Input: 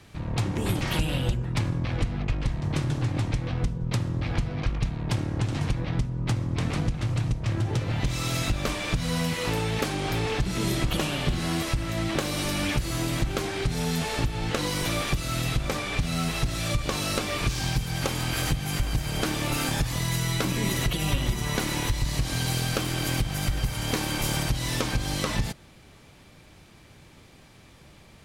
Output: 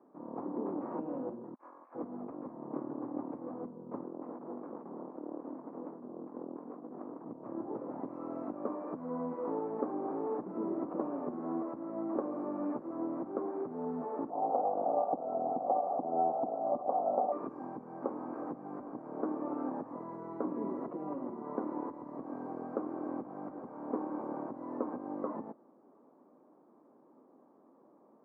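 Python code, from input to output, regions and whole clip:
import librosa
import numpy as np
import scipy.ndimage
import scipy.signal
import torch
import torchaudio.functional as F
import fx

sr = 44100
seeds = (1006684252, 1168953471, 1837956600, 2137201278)

y = fx.chain(x, sr, fx.highpass(hz=1300.0, slope=12),
    fx.high_shelf(hz=4300.0, db=11.0),
    fx.over_compress(threshold_db=-41.0, ratio=-0.5), at=(1.54, 1.95))
y = fx.chain(y, sr, fx.highpass(hz=160.0, slope=24),
    fx.over_compress(threshold_db=-36.0, ratio=-1.0),
    fx.doppler_dist(depth_ms=0.72), at=(4.03, 7.26))
y = fx.chain(y, sr, fx.lower_of_two(delay_ms=1.5),
    fx.lowpass_res(hz=750.0, q=9.1), at=(14.3, 17.32))
y = scipy.signal.sosfilt(scipy.signal.ellip(3, 1.0, 50, [250.0, 1100.0], 'bandpass', fs=sr, output='sos'), y)
y = fx.tilt_shelf(y, sr, db=3.0, hz=670.0)
y = y * 10.0 ** (-5.0 / 20.0)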